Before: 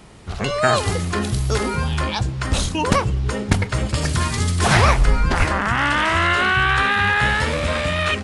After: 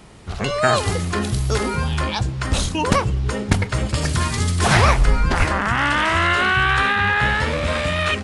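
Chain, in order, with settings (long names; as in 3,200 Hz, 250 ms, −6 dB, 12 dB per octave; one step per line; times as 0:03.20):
0:06.91–0:07.66: high-shelf EQ 5,700 Hz → 8,000 Hz −9 dB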